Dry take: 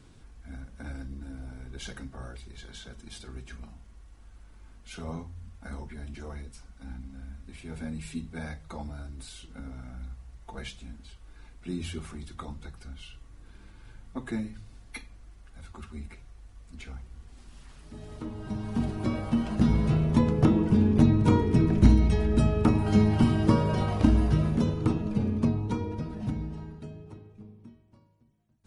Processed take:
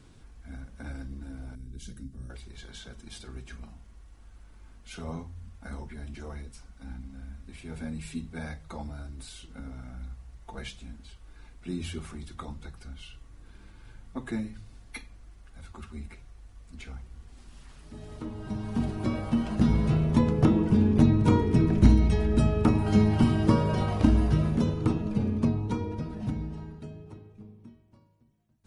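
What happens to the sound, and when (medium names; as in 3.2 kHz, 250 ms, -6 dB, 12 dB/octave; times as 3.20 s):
1.55–2.30 s: FFT filter 260 Hz 0 dB, 800 Hz -24 dB, 1.2 kHz -19 dB, 8.9 kHz -2 dB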